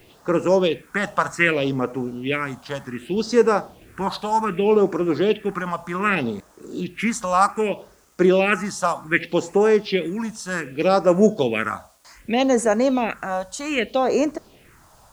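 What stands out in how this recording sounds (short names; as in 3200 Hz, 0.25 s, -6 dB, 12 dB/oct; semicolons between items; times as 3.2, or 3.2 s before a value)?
phasing stages 4, 0.65 Hz, lowest notch 360–3300 Hz; a quantiser's noise floor 10-bit, dither none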